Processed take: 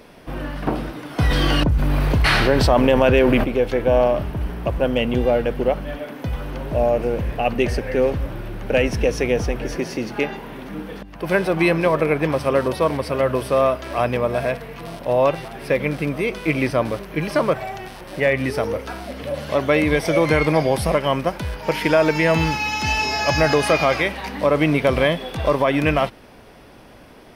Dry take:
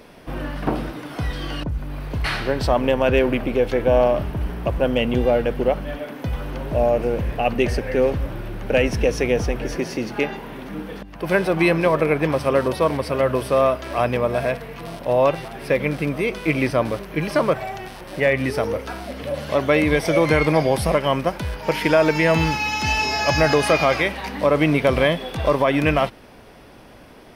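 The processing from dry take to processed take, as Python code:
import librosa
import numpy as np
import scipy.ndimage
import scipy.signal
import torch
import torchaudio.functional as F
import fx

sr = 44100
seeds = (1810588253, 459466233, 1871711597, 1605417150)

y = fx.env_flatten(x, sr, amount_pct=70, at=(1.18, 3.43), fade=0.02)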